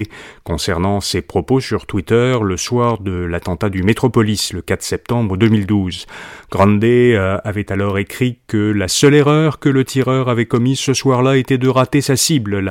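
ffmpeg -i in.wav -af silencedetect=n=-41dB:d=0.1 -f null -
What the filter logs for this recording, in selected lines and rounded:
silence_start: 8.34
silence_end: 8.49 | silence_duration: 0.15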